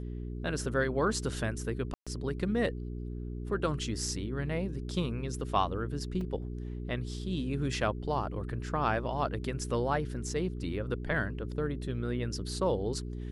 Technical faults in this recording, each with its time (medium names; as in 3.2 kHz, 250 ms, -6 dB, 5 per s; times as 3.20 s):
hum 60 Hz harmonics 7 -38 dBFS
1.94–2.07 s: dropout 126 ms
6.21 s: dropout 3.1 ms